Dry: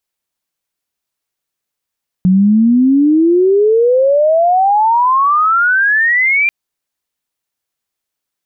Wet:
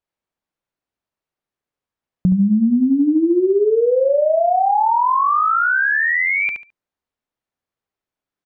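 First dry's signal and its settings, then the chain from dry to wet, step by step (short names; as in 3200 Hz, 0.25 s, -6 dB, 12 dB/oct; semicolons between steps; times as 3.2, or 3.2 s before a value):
chirp logarithmic 180 Hz -> 2400 Hz -6 dBFS -> -9 dBFS 4.24 s
LPF 1100 Hz 6 dB/oct; feedback echo 71 ms, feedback 20%, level -6 dB; compressor 5:1, threshold -13 dBFS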